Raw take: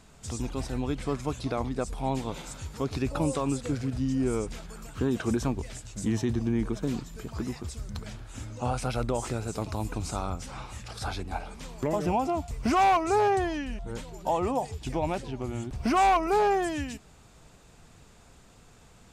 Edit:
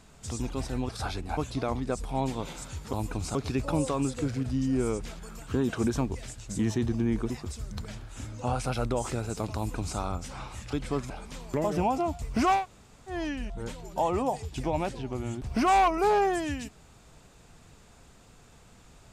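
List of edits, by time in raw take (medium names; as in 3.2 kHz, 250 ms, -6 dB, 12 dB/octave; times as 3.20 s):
0.89–1.26 s: swap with 10.91–11.39 s
6.77–7.48 s: delete
9.74–10.16 s: copy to 2.82 s
12.87–13.43 s: room tone, crossfade 0.16 s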